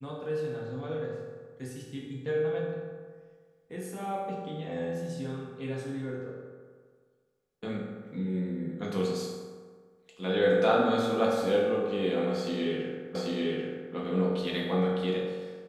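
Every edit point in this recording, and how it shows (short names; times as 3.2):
13.15 repeat of the last 0.79 s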